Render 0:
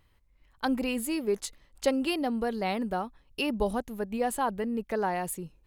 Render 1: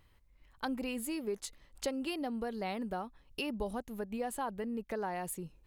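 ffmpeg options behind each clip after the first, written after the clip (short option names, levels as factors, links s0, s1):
-af "acompressor=threshold=0.01:ratio=2"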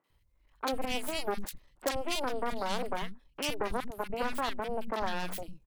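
-filter_complex "[0:a]aeval=exprs='0.0841*(cos(1*acos(clip(val(0)/0.0841,-1,1)))-cos(1*PI/2))+0.015*(cos(3*acos(clip(val(0)/0.0841,-1,1)))-cos(3*PI/2))+0.0266*(cos(5*acos(clip(val(0)/0.0841,-1,1)))-cos(5*PI/2))+0.0299*(cos(7*acos(clip(val(0)/0.0841,-1,1)))-cos(7*PI/2))+0.015*(cos(8*acos(clip(val(0)/0.0841,-1,1)))-cos(8*PI/2))':c=same,acrossover=split=220|1800[s0][s1][s2];[s2]adelay=40[s3];[s0]adelay=100[s4];[s4][s1][s3]amix=inputs=3:normalize=0,volume=1.68"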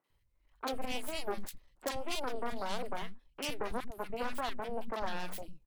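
-af "flanger=delay=1.3:depth=7.7:regen=70:speed=1.8:shape=sinusoidal"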